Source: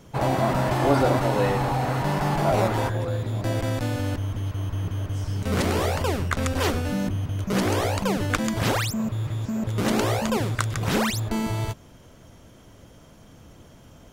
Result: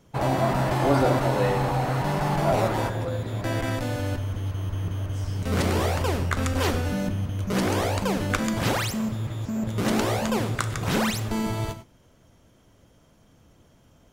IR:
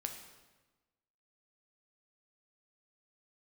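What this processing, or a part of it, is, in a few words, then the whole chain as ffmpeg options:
keyed gated reverb: -filter_complex "[0:a]asettb=1/sr,asplit=3[a][b][c];[a]atrim=end=3.284[d];[b]atrim=start=3.28:end=3.76,asetpts=PTS-STARTPTS,afade=t=in:d=0.004:c=qsin,afade=t=out:st=0.476:d=0.004:c=qsin,equalizer=f=1.8k:t=o:w=1.4:g=4.5[e];[c]atrim=start=3.756[f];[d][e]acrossfade=d=0.004:c1=hsin:c2=qsin[g];[g][f]acrossfade=d=0.004:c1=qsin:c2=hsin,asplit=3[h][i][j];[1:a]atrim=start_sample=2205[k];[i][k]afir=irnorm=-1:irlink=0[l];[j]apad=whole_len=622692[m];[l][m]sidechaingate=range=-33dB:threshold=-39dB:ratio=16:detection=peak,volume=4.5dB[n];[h][n]amix=inputs=2:normalize=0,volume=-8.5dB"

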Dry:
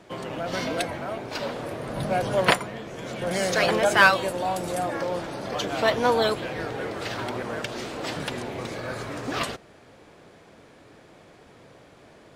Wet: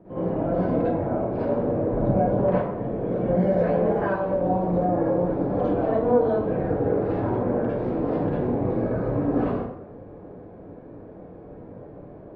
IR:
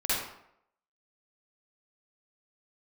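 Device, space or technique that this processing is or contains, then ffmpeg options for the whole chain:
television next door: -filter_complex "[0:a]acompressor=threshold=-28dB:ratio=3,lowpass=500[a];[1:a]atrim=start_sample=2205[b];[a][b]afir=irnorm=-1:irlink=0,volume=3.5dB"

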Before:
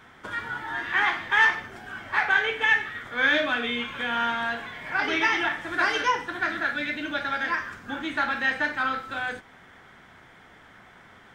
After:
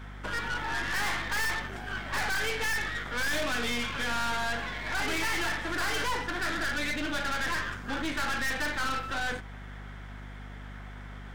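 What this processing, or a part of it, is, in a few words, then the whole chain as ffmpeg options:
valve amplifier with mains hum: -af "aeval=exprs='(tanh(56.2*val(0)+0.75)-tanh(0.75))/56.2':c=same,aeval=exprs='val(0)+0.00398*(sin(2*PI*50*n/s)+sin(2*PI*2*50*n/s)/2+sin(2*PI*3*50*n/s)/3+sin(2*PI*4*50*n/s)/4+sin(2*PI*5*50*n/s)/5)':c=same,volume=6dB"

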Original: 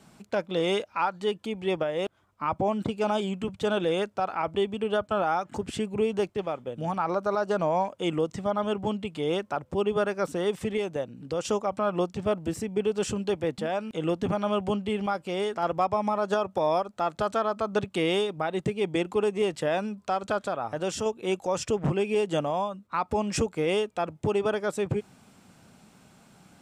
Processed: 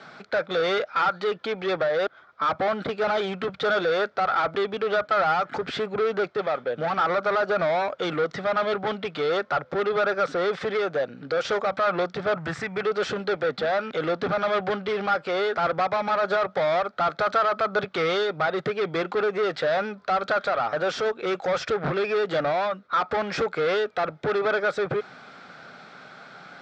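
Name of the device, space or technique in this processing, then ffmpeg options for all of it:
overdrive pedal into a guitar cabinet: -filter_complex "[0:a]asettb=1/sr,asplit=3[a][b][c];[a]atrim=end=12.364[d];[b]atrim=start=12.36:end=12.83,asetpts=PTS-STARTPTS,afade=t=in:d=0.004:c=qsin,afade=t=out:st=0.466:d=0.004:c=qsin,equalizer=f=125:t=o:w=1:g=9,equalizer=f=250:t=o:w=1:g=-5,equalizer=f=500:t=o:w=1:g=-9,equalizer=f=1k:t=o:w=1:g=6,equalizer=f=2k:t=o:w=1:g=6,equalizer=f=4k:t=o:w=1:g=-7,equalizer=f=8k:t=o:w=1:g=7[e];[c]atrim=start=12.826[f];[d][e]acrossfade=d=0.004:c1=hsin:c2=qsin[g];[g][f]acrossfade=d=0.004:c1=qsin:c2=hsin,asplit=2[h][i];[i]highpass=f=720:p=1,volume=24dB,asoftclip=type=tanh:threshold=-14.5dB[j];[h][j]amix=inputs=2:normalize=0,lowpass=f=5.7k:p=1,volume=-6dB,highpass=77,equalizer=f=100:t=q:w=4:g=-9,equalizer=f=210:t=q:w=4:g=-8,equalizer=f=320:t=q:w=4:g=-6,equalizer=f=960:t=q:w=4:g=-8,equalizer=f=1.4k:t=q:w=4:g=7,equalizer=f=2.8k:t=q:w=4:g=-10,lowpass=f=4.3k:w=0.5412,lowpass=f=4.3k:w=1.3066,volume=-1dB"

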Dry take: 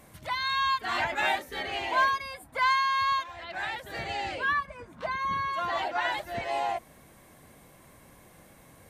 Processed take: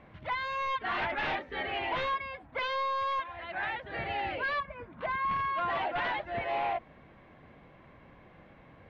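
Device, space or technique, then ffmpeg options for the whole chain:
synthesiser wavefolder: -af "aeval=exprs='0.0531*(abs(mod(val(0)/0.0531+3,4)-2)-1)':c=same,lowpass=f=3k:w=0.5412,lowpass=f=3k:w=1.3066"

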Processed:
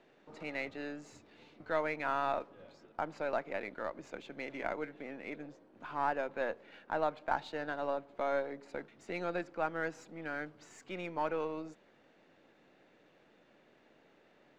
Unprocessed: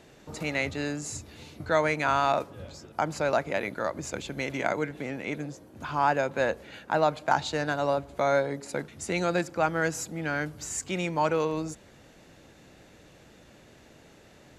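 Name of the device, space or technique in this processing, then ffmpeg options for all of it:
crystal radio: -af "highpass=240,lowpass=3k,aeval=exprs='if(lt(val(0),0),0.708*val(0),val(0))':c=same,volume=-7.5dB"

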